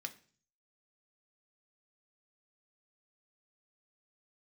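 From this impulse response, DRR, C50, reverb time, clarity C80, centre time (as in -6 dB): 5.0 dB, 16.5 dB, 0.45 s, 20.5 dB, 5 ms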